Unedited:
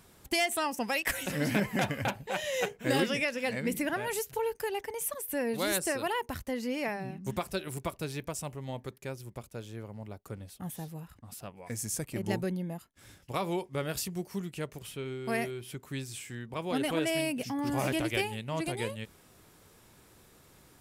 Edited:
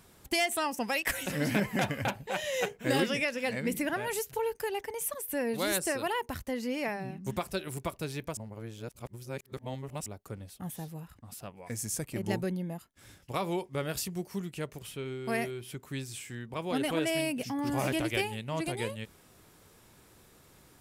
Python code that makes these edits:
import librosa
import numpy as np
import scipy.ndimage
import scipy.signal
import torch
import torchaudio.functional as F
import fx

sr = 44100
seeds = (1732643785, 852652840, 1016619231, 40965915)

y = fx.edit(x, sr, fx.reverse_span(start_s=8.37, length_s=1.69), tone=tone)